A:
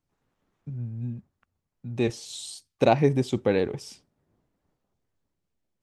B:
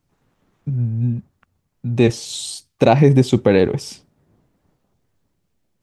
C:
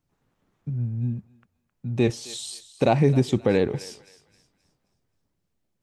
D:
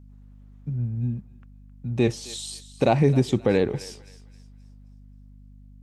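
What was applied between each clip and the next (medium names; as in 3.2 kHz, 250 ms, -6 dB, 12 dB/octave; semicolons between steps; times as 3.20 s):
peaking EQ 140 Hz +3.5 dB 1.7 oct; loudness maximiser +11 dB; trim -1 dB
thinning echo 264 ms, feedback 38%, high-pass 880 Hz, level -15.5 dB; trim -7 dB
hum 50 Hz, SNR 21 dB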